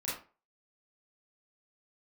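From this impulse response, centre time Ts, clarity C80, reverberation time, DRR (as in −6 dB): 46 ms, 9.5 dB, 0.35 s, −8.5 dB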